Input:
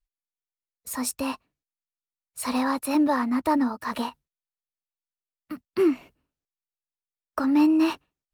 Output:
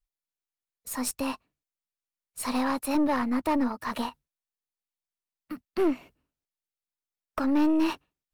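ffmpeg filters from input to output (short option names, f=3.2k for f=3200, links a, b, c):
-af "aeval=exprs='(tanh(8.91*val(0)+0.45)-tanh(0.45))/8.91':c=same"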